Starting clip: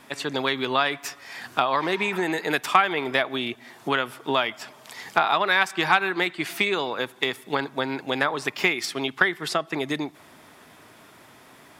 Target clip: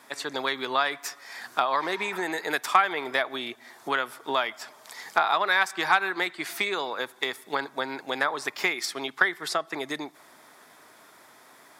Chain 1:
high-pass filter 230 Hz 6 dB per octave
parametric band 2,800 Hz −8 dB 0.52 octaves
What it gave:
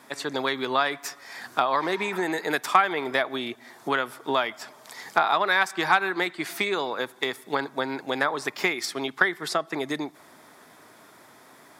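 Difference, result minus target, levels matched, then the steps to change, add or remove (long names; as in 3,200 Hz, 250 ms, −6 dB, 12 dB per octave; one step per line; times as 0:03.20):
250 Hz band +4.0 dB
change: high-pass filter 630 Hz 6 dB per octave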